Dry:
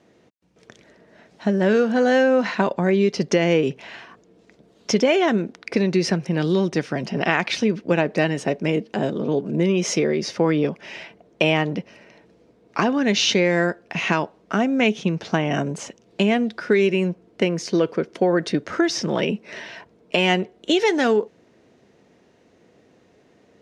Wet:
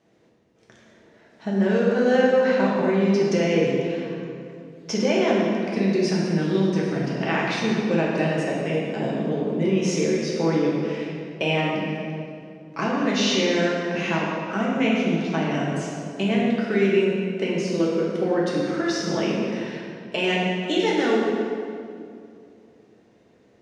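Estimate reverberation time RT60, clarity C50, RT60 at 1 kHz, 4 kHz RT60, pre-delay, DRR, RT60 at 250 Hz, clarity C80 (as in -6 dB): 2.4 s, -1.0 dB, 2.2 s, 1.6 s, 4 ms, -5.0 dB, 3.0 s, 0.5 dB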